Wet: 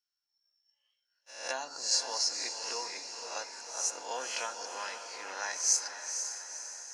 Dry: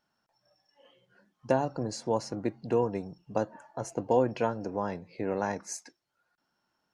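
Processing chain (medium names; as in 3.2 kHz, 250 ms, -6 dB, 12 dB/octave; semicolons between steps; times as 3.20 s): reverse spectral sustain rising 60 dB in 0.48 s; peaking EQ 5.4 kHz +13 dB 1.2 oct; gate -50 dBFS, range -28 dB; high-pass 1.4 kHz 12 dB/octave; echo that smears into a reverb 494 ms, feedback 53%, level -7 dB; on a send at -13.5 dB: reverberation RT60 0.65 s, pre-delay 4 ms; on the sum: tape noise reduction on one side only encoder only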